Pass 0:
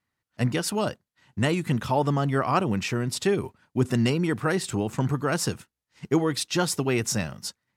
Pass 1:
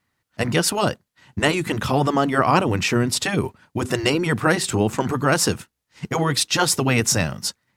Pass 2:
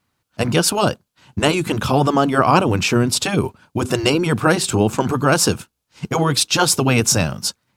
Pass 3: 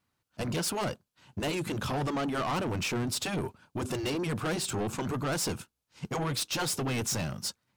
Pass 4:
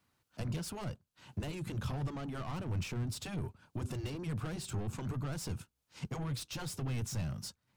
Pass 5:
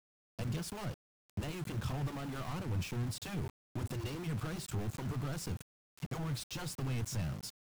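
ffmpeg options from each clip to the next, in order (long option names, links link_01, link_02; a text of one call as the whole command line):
ffmpeg -i in.wav -af "afftfilt=real='re*lt(hypot(re,im),0.447)':imag='im*lt(hypot(re,im),0.447)':win_size=1024:overlap=0.75,volume=8.5dB" out.wav
ffmpeg -i in.wav -af "equalizer=frequency=1900:width_type=o:width=0.21:gain=-11,volume=3.5dB" out.wav
ffmpeg -i in.wav -af "asoftclip=type=tanh:threshold=-19dB,volume=-8.5dB" out.wav
ffmpeg -i in.wav -filter_complex "[0:a]acrossover=split=140[link_01][link_02];[link_02]acompressor=threshold=-50dB:ratio=3[link_03];[link_01][link_03]amix=inputs=2:normalize=0,volume=2.5dB" out.wav
ffmpeg -i in.wav -af "aeval=exprs='val(0)*gte(abs(val(0)),0.00668)':channel_layout=same" out.wav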